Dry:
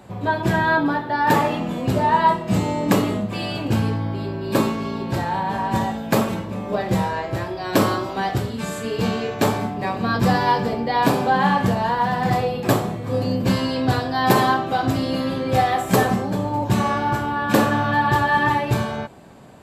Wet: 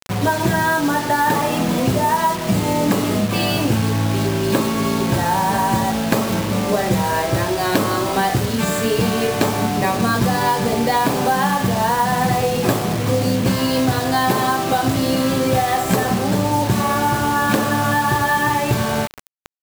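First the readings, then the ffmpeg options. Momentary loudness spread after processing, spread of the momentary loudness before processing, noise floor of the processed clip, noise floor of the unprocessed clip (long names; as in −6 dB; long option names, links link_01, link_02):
2 LU, 8 LU, −23 dBFS, −31 dBFS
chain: -af "acompressor=threshold=-23dB:ratio=12,acrusher=bits=5:mix=0:aa=0.000001,volume=9dB"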